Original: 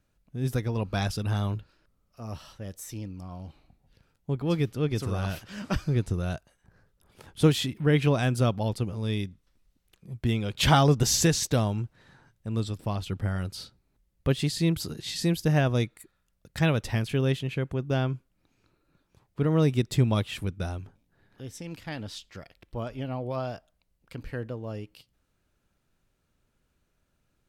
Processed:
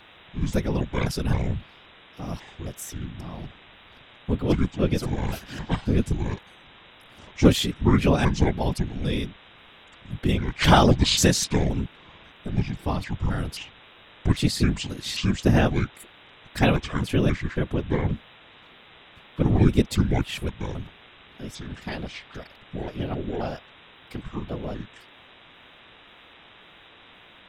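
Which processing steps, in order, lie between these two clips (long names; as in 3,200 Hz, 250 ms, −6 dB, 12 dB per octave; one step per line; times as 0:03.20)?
pitch shifter gated in a rhythm −8 semitones, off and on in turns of 266 ms
hum with harmonics 120 Hz, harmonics 32, −55 dBFS 0 dB per octave
random phases in short frames
level +4 dB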